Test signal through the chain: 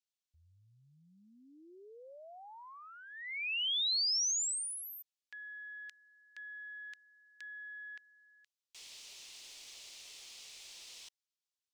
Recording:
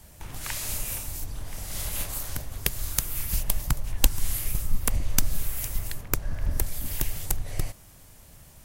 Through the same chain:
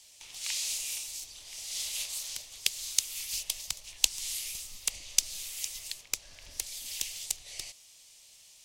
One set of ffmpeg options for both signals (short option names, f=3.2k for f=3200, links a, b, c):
-filter_complex "[0:a]acrossover=split=370 7400:gain=0.178 1 0.0794[a][b][c];[a][b][c]amix=inputs=3:normalize=0,aeval=exprs='0.562*(cos(1*acos(clip(val(0)/0.562,-1,1)))-cos(1*PI/2))+0.0355*(cos(2*acos(clip(val(0)/0.562,-1,1)))-cos(2*PI/2))':c=same,aexciter=amount=11.8:drive=1.5:freq=2.3k,volume=-14.5dB"